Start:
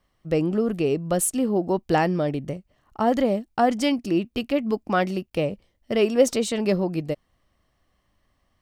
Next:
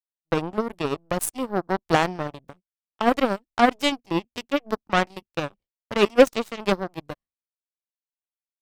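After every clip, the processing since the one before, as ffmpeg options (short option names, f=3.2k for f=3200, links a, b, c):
-af "aeval=exprs='0.531*(cos(1*acos(clip(val(0)/0.531,-1,1)))-cos(1*PI/2))+0.00944*(cos(3*acos(clip(val(0)/0.531,-1,1)))-cos(3*PI/2))+0.0119*(cos(4*acos(clip(val(0)/0.531,-1,1)))-cos(4*PI/2))+0.0188*(cos(6*acos(clip(val(0)/0.531,-1,1)))-cos(6*PI/2))+0.075*(cos(7*acos(clip(val(0)/0.531,-1,1)))-cos(7*PI/2))':c=same,agate=range=-33dB:threshold=-49dB:ratio=3:detection=peak,volume=3.5dB"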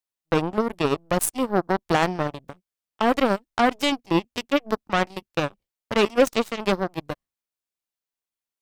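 -af "alimiter=limit=-11.5dB:level=0:latency=1:release=16,volume=4dB"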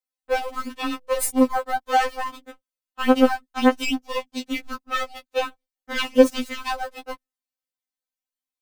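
-filter_complex "[0:a]asplit=2[a][b];[b]acrusher=bits=5:dc=4:mix=0:aa=0.000001,volume=-8.5dB[c];[a][c]amix=inputs=2:normalize=0,afftfilt=real='re*3.46*eq(mod(b,12),0)':imag='im*3.46*eq(mod(b,12),0)':win_size=2048:overlap=0.75,volume=-1dB"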